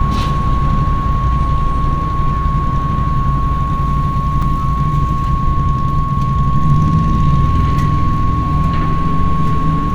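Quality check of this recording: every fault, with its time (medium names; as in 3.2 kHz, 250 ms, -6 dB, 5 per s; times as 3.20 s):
whine 1.1 kHz -19 dBFS
4.42–4.43 s: dropout 5.2 ms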